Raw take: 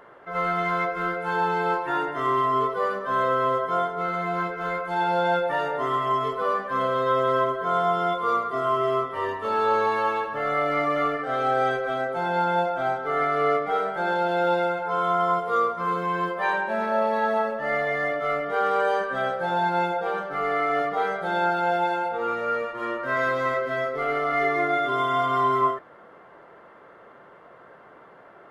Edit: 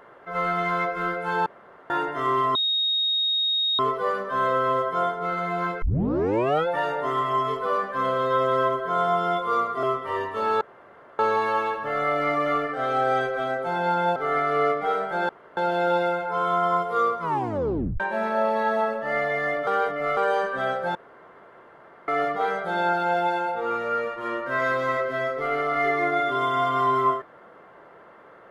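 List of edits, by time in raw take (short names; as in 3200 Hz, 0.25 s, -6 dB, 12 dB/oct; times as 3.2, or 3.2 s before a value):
1.46–1.9 room tone
2.55 add tone 3740 Hz -20.5 dBFS 1.24 s
4.58 tape start 0.85 s
8.59–8.91 cut
9.69 insert room tone 0.58 s
12.66–13.01 cut
14.14 insert room tone 0.28 s
15.78 tape stop 0.79 s
18.24–18.74 reverse
19.52–20.65 room tone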